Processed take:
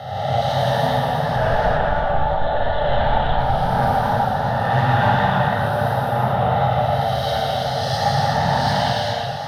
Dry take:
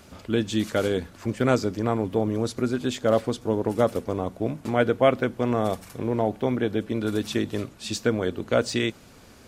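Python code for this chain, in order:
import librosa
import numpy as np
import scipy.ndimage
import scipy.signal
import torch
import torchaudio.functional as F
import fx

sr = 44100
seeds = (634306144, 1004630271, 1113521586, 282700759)

y = fx.spec_swells(x, sr, rise_s=1.71)
y = fx.peak_eq(y, sr, hz=430.0, db=4.0, octaves=0.77)
y = y + 10.0 ** (-11.5 / 20.0) * np.pad(y, (int(1144 * sr / 1000.0), 0))[:len(y)]
y = y * np.sin(2.0 * np.pi * 350.0 * np.arange(len(y)) / sr)
y = scipy.signal.sosfilt(scipy.signal.butter(4, 92.0, 'highpass', fs=sr, output='sos'), y)
y = np.clip(10.0 ** (10.5 / 20.0) * y, -1.0, 1.0) / 10.0 ** (10.5 / 20.0)
y = fx.peak_eq(y, sr, hz=1200.0, db=8.5, octaves=0.36)
y = fx.lpc_monotone(y, sr, seeds[0], pitch_hz=290.0, order=10, at=(1.36, 3.39))
y = fx.fixed_phaser(y, sr, hz=1600.0, stages=8)
y = 10.0 ** (-14.5 / 20.0) * np.tanh(y / 10.0 ** (-14.5 / 20.0))
y = fx.rev_gated(y, sr, seeds[1], gate_ms=440, shape='flat', drr_db=-5.0)
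y = fx.echo_warbled(y, sr, ms=113, feedback_pct=76, rate_hz=2.8, cents=153, wet_db=-11.0)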